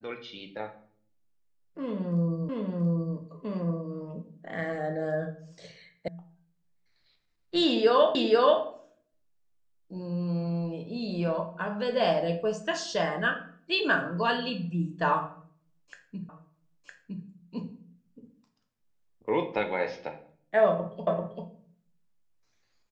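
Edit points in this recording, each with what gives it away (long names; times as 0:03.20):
0:02.49: the same again, the last 0.68 s
0:06.08: cut off before it has died away
0:08.15: the same again, the last 0.48 s
0:16.29: the same again, the last 0.96 s
0:21.07: the same again, the last 0.39 s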